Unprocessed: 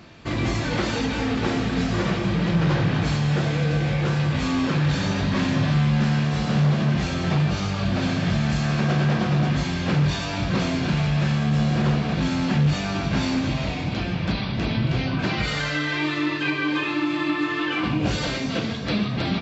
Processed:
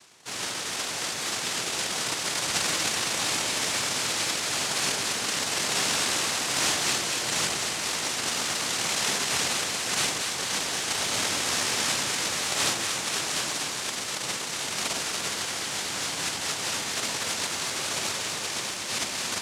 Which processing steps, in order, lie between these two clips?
cochlear-implant simulation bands 1
delay that swaps between a low-pass and a high-pass 117 ms, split 920 Hz, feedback 85%, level −4 dB
level −8 dB

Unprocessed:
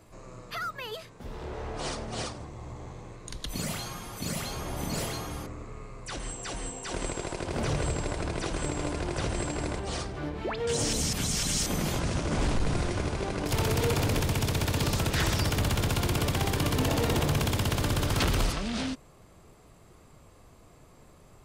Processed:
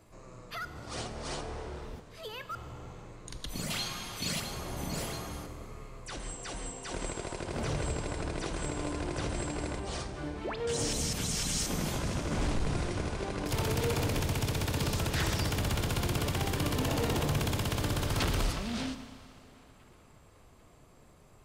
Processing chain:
0:03.70–0:04.40: parametric band 3,400 Hz +10 dB 1.9 octaves
delay with a band-pass on its return 797 ms, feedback 50%, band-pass 1,400 Hz, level −23.5 dB
0:00.65–0:02.55: reverse
four-comb reverb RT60 2.4 s, combs from 30 ms, DRR 11 dB
level −4 dB

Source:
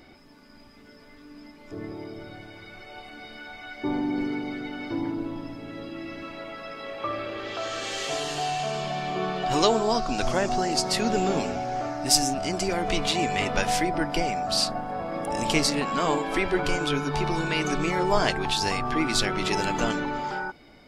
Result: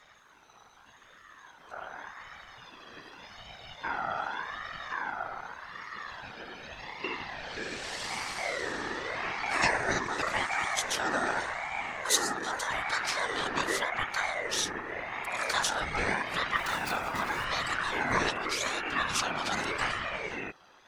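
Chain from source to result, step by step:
0:16.56–0:17.45: gap after every zero crossing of 0.074 ms
random phases in short frames
ring modulator whose carrier an LFO sweeps 1,300 Hz, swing 20%, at 0.85 Hz
level −3 dB

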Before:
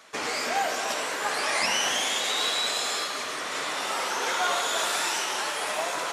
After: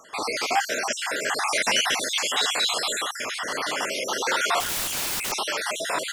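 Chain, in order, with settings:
time-frequency cells dropped at random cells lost 50%
0:04.60–0:05.32: wrap-around overflow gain 28 dB
level +5.5 dB

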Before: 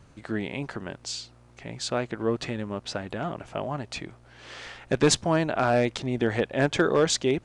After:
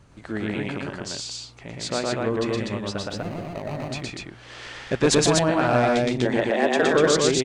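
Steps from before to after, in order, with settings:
0:02.98–0:03.88: running median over 41 samples
0:06.25–0:06.83: frequency shifter +110 Hz
loudspeakers that aren't time-aligned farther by 40 metres −1 dB, 53 metres −10 dB, 84 metres −2 dB

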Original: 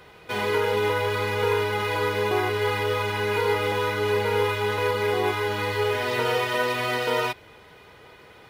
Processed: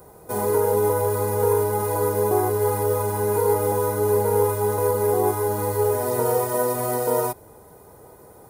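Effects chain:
drawn EQ curve 830 Hz 0 dB, 2,900 Hz −26 dB, 10,000 Hz +12 dB
level +4 dB

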